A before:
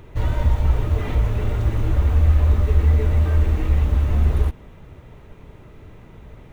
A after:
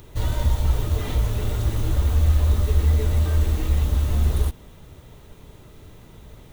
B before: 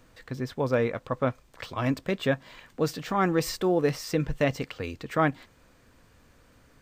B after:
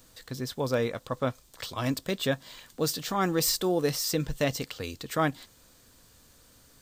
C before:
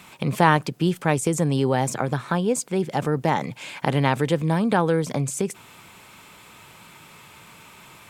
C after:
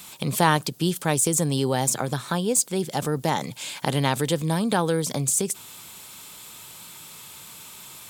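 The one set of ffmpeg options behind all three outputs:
ffmpeg -i in.wav -af "aexciter=amount=1.7:drive=9.6:freq=3300,volume=-2.5dB" out.wav

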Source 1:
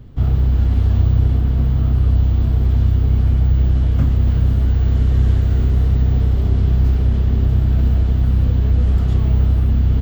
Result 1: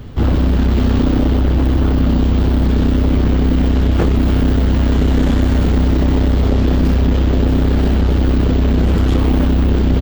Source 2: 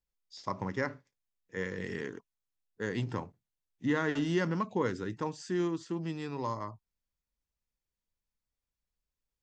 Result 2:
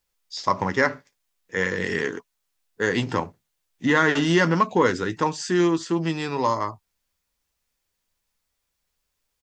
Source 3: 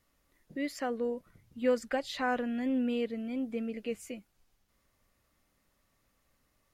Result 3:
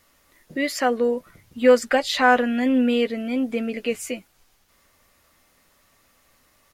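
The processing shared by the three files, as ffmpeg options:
ffmpeg -i in.wav -filter_complex "[0:a]aeval=exprs='0.668*sin(PI/2*3.16*val(0)/0.668)':channel_layout=same,lowshelf=frequency=360:gain=-8.5,asplit=2[link_01][link_02];[link_02]adelay=12,volume=-11dB[link_03];[link_01][link_03]amix=inputs=2:normalize=0,volume=1dB" out.wav

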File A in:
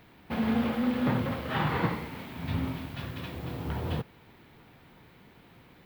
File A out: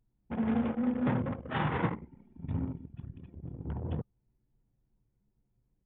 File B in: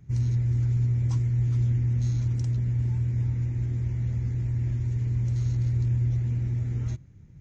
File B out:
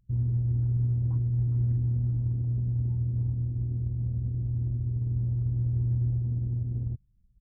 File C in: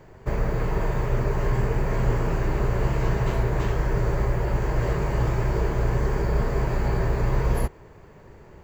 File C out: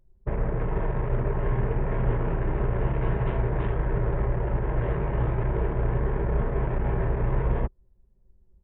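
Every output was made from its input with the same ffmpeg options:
ffmpeg -i in.wav -af "anlmdn=39.8,bandreject=frequency=1200:width=28,aresample=8000,aresample=44100,volume=-2dB" out.wav

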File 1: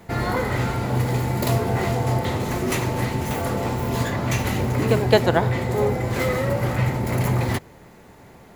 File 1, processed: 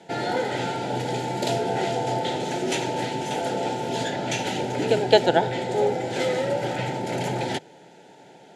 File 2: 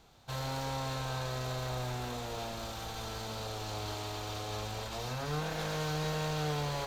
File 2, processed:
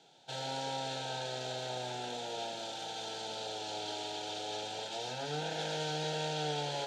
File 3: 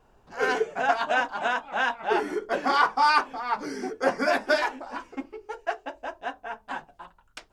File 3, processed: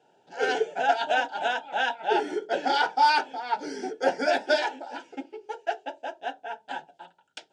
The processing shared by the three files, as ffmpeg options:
ffmpeg -i in.wav -af "asuperstop=centerf=1100:order=4:qfactor=2,highpass=frequency=170:width=0.5412,highpass=frequency=170:width=1.3066,equalizer=frequency=220:width_type=q:width=4:gain=-9,equalizer=frequency=930:width_type=q:width=4:gain=8,equalizer=frequency=2000:width_type=q:width=4:gain=-6,equalizer=frequency=3300:width_type=q:width=4:gain=6,lowpass=frequency=8600:width=0.5412,lowpass=frequency=8600:width=1.3066" out.wav

